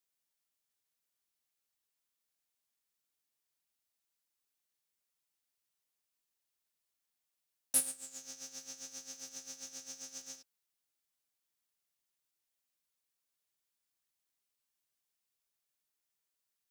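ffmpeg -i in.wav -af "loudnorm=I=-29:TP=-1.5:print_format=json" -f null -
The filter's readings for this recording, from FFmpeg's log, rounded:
"input_i" : "-39.3",
"input_tp" : "-12.6",
"input_lra" : "9.2",
"input_thresh" : "-49.7",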